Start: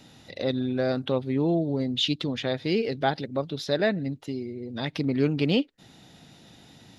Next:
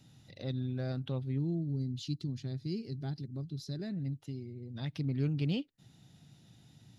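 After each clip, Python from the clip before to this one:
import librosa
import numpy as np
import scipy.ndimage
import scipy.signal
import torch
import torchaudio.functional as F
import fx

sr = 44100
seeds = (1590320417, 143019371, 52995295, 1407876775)

y = fx.graphic_eq(x, sr, hz=(125, 250, 500, 1000, 2000, 4000), db=(9, -3, -7, -5, -5, -3))
y = fx.spec_box(y, sr, start_s=1.39, length_s=2.53, low_hz=430.0, high_hz=3900.0, gain_db=-11)
y = y * 10.0 ** (-8.5 / 20.0)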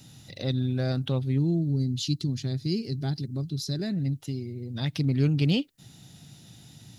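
y = fx.high_shelf(x, sr, hz=4600.0, db=9.5)
y = y * 10.0 ** (8.5 / 20.0)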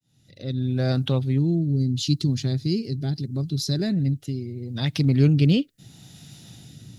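y = fx.fade_in_head(x, sr, length_s=0.99)
y = fx.rotary(y, sr, hz=0.75)
y = y * 10.0 ** (6.0 / 20.0)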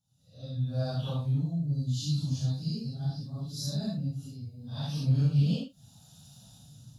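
y = fx.phase_scramble(x, sr, seeds[0], window_ms=200)
y = fx.fixed_phaser(y, sr, hz=860.0, stages=4)
y = y * 10.0 ** (-5.0 / 20.0)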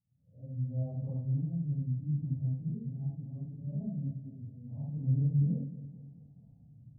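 y = scipy.ndimage.gaussian_filter1d(x, 16.0, mode='constant')
y = fx.echo_feedback(y, sr, ms=216, feedback_pct=52, wet_db=-14)
y = y * 10.0 ** (-3.0 / 20.0)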